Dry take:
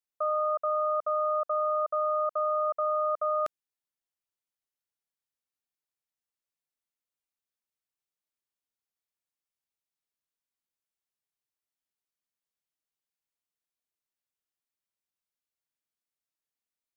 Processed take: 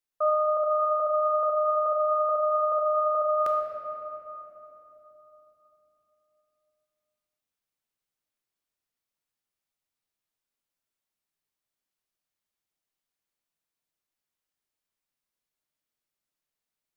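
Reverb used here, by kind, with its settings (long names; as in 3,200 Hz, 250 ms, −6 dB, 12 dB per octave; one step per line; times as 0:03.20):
rectangular room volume 210 cubic metres, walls hard, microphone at 0.48 metres
level +1.5 dB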